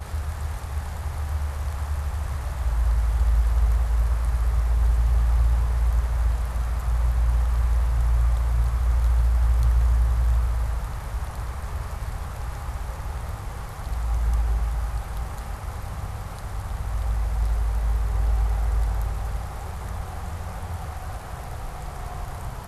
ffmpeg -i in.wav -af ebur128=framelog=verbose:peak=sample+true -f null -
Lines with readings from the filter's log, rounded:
Integrated loudness:
  I:         -26.8 LUFS
  Threshold: -36.8 LUFS
Loudness range:
  LRA:         8.0 LU
  Threshold: -46.4 LUFS
  LRA low:   -31.5 LUFS
  LRA high:  -23.6 LUFS
Sample peak:
  Peak:      -11.3 dBFS
True peak:
  Peak:      -11.3 dBFS